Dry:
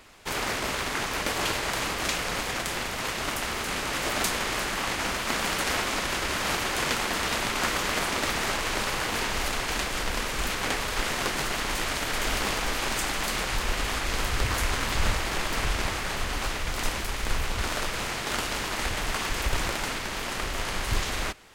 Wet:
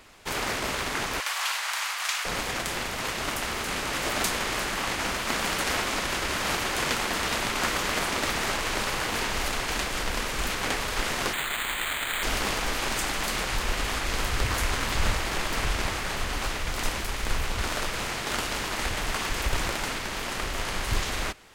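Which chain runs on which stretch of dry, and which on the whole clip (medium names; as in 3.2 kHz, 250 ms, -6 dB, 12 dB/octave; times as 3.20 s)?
1.20–2.25 s: high-pass 890 Hz 24 dB/octave + flutter echo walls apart 10 m, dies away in 0.35 s
11.33–12.23 s: tilt shelf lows -9.5 dB, about 1.2 kHz + careless resampling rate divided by 8×, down filtered, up hold
whole clip: none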